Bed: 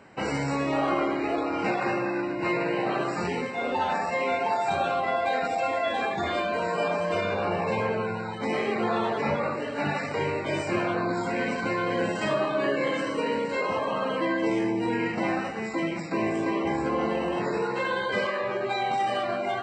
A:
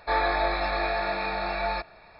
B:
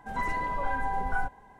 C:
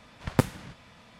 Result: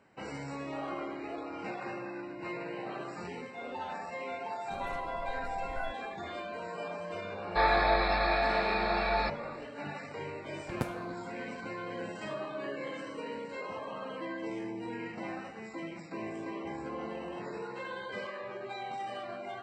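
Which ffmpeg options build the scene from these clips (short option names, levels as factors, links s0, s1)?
-filter_complex "[0:a]volume=0.237[s0];[2:a]atrim=end=1.59,asetpts=PTS-STARTPTS,volume=0.316,afade=t=in:d=0.004:c=hsin,afade=t=out:st=1.586:d=0.004:c=hsin,adelay=4640[s1];[1:a]atrim=end=2.19,asetpts=PTS-STARTPTS,volume=0.891,afade=t=in:d=0.004:c=hsin,afade=t=out:st=2.186:d=0.004:c=hsin,adelay=7480[s2];[3:a]atrim=end=1.19,asetpts=PTS-STARTPTS,volume=0.251,afade=t=in:d=0.004:c=hsin,afade=t=out:st=1.186:d=0.004:c=hsin,adelay=459522S[s3];[s0][s1][s2][s3]amix=inputs=4:normalize=0"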